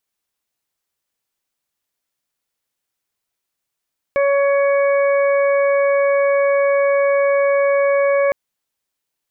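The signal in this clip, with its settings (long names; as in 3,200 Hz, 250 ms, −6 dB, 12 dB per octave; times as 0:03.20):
steady harmonic partials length 4.16 s, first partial 560 Hz, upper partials −11.5/−14/−13 dB, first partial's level −13 dB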